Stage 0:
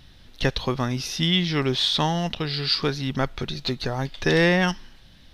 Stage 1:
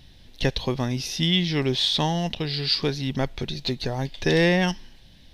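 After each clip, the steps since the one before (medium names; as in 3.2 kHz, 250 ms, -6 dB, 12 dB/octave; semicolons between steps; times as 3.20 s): peaking EQ 1.3 kHz -10 dB 0.56 oct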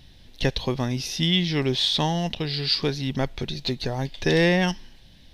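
no audible change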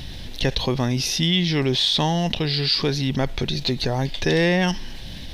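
level flattener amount 50%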